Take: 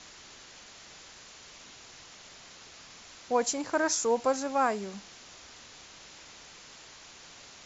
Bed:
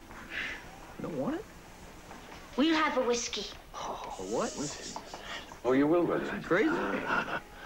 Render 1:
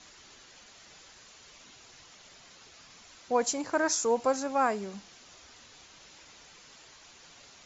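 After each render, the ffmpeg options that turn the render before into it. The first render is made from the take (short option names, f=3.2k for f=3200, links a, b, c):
-af "afftdn=nr=6:nf=-51"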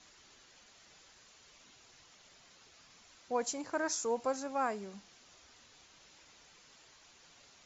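-af "volume=-7dB"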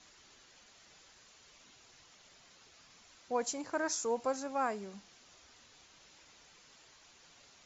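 -af anull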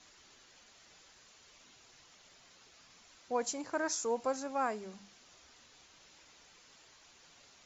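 -af "bandreject=f=50:t=h:w=6,bandreject=f=100:t=h:w=6,bandreject=f=150:t=h:w=6,bandreject=f=200:t=h:w=6"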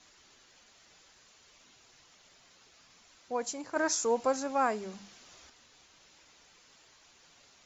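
-filter_complex "[0:a]asettb=1/sr,asplit=3[a][b][c];[a]atrim=end=3.764[d];[b]atrim=start=3.76:end=5.5,asetpts=PTS-STARTPTS,afade=t=in:d=0.004:c=qsin,afade=t=out:st=1.736:d=0.004:c=qsin,acontrast=29[e];[c]atrim=start=5.496[f];[d][e]acrossfade=d=0.004:c1=hsin:c2=qsin[g];[g][f]acrossfade=d=0.004:c1=qsin:c2=hsin"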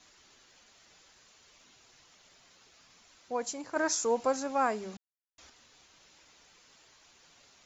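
-filter_complex "[0:a]asplit=3[a][b][c];[a]atrim=end=4.97,asetpts=PTS-STARTPTS,afade=t=out:st=4.966:d=0.004:c=hsin[d];[b]atrim=start=4.97:end=5.38,asetpts=PTS-STARTPTS,volume=0[e];[c]atrim=start=5.38,asetpts=PTS-STARTPTS,afade=t=in:d=0.004:c=hsin[f];[d][e][f]concat=n=3:v=0:a=1"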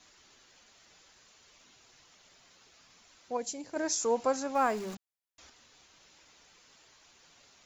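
-filter_complex "[0:a]asettb=1/sr,asplit=3[a][b][c];[a]atrim=end=3.374[d];[b]atrim=start=3.37:end=4.01,asetpts=PTS-STARTPTS,afade=t=in:d=0.004:c=qsin,afade=t=out:st=0.636:d=0.004:c=qsin,equalizer=f=1.2k:t=o:w=1:g=-12.5[e];[c]atrim=start=4.006[f];[d][e]acrossfade=d=0.004:c1=hsin:c2=qsin[g];[g][f]acrossfade=d=0.004:c1=qsin:c2=hsin,asettb=1/sr,asplit=3[h][i][j];[h]atrim=end=4.554[k];[i]atrim=start=4.55:end=4.95,asetpts=PTS-STARTPTS,afade=t=in:d=0.004:c=qsin,afade=t=out:st=0.396:d=0.004:c=qsin,aeval=exprs='val(0)+0.5*0.00794*sgn(val(0))':c=same[l];[j]atrim=start=4.946[m];[k][l]acrossfade=d=0.004:c1=hsin:c2=qsin[n];[n][m]acrossfade=d=0.004:c1=qsin:c2=hsin"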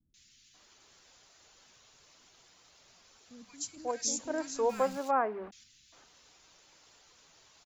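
-filter_complex "[0:a]acrossover=split=230|2100[a][b][c];[c]adelay=140[d];[b]adelay=540[e];[a][e][d]amix=inputs=3:normalize=0"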